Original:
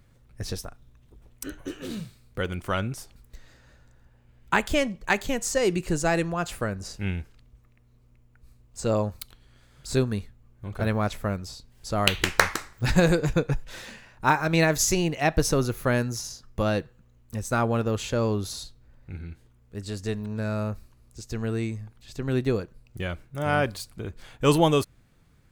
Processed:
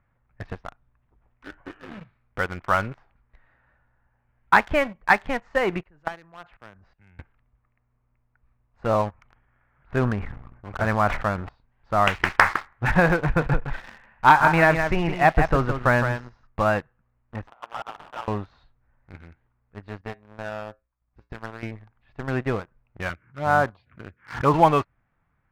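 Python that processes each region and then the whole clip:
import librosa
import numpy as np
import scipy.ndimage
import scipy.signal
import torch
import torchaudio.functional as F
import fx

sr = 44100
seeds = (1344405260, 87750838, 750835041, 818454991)

y = fx.chain(x, sr, fx.level_steps(step_db=21),
    fx.band_widen(depth_pct=70), at=(5.83, 7.19))
y = fx.chain(y, sr, fx.lowpass(hz=2700.0, slope=24),
    fx.sustainer(db_per_s=38.0), at=(9.12, 11.49))
y = fx.chain(y, sr, fx.low_shelf(hz=85.0, db=7.0),
    fx.echo_single(ms=163, db=-7.5), at=(13.2, 16.47))
y = fx.chain(y, sr, fx.double_bandpass(hz=2700.0, octaves=2.0),
    fx.over_compress(threshold_db=-39.0, ratio=-0.5),
    fx.sample_hold(seeds[0], rate_hz=2100.0, jitter_pct=20), at=(17.47, 18.28))
y = fx.chain(y, sr, fx.transient(attack_db=8, sustain_db=-11),
    fx.comb_fb(f0_hz=59.0, decay_s=0.2, harmonics='odd', damping=0.0, mix_pct=80), at=(20.01, 21.63))
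y = fx.chain(y, sr, fx.highpass(hz=74.0, slope=24),
    fx.env_phaser(low_hz=510.0, high_hz=2800.0, full_db=-21.5),
    fx.pre_swell(db_per_s=140.0), at=(23.09, 24.54))
y = scipy.signal.sosfilt(scipy.signal.butter(4, 2100.0, 'lowpass', fs=sr, output='sos'), y)
y = fx.low_shelf_res(y, sr, hz=600.0, db=-7.5, q=1.5)
y = fx.leveller(y, sr, passes=2)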